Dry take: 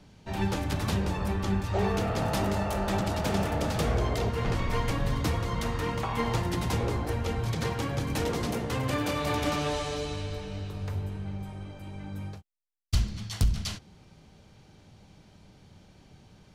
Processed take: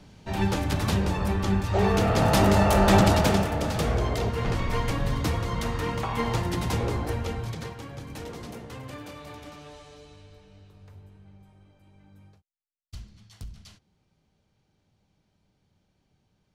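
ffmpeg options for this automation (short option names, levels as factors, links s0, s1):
-af "volume=3.55,afade=t=in:st=1.71:d=1.32:silence=0.421697,afade=t=out:st=3.03:d=0.44:silence=0.334965,afade=t=out:st=7.09:d=0.66:silence=0.298538,afade=t=out:st=8.59:d=0.93:silence=0.446684"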